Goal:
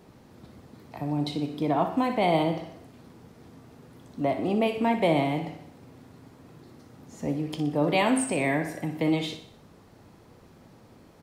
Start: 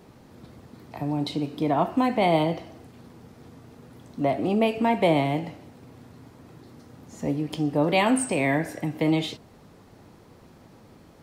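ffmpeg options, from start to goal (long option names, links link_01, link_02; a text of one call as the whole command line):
ffmpeg -i in.wav -af "aecho=1:1:61|122|183|244|305:0.316|0.155|0.0759|0.0372|0.0182,volume=-2.5dB" out.wav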